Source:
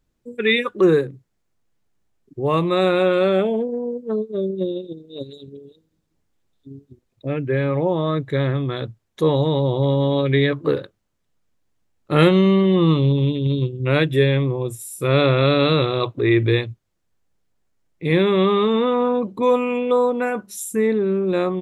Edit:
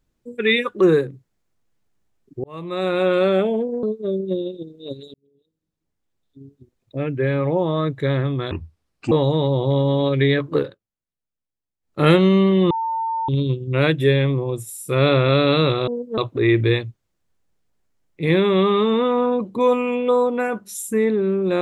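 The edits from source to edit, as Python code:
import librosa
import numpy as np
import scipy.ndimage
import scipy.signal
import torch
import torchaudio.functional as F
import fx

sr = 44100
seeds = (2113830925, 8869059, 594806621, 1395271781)

y = fx.edit(x, sr, fx.fade_in_span(start_s=2.44, length_s=0.7),
    fx.move(start_s=3.83, length_s=0.3, to_s=16.0),
    fx.fade_in_span(start_s=5.44, length_s=1.97),
    fx.speed_span(start_s=8.81, length_s=0.43, speed=0.71),
    fx.fade_down_up(start_s=10.7, length_s=1.42, db=-18.5, fade_s=0.2),
    fx.bleep(start_s=12.83, length_s=0.58, hz=902.0, db=-20.5), tone=tone)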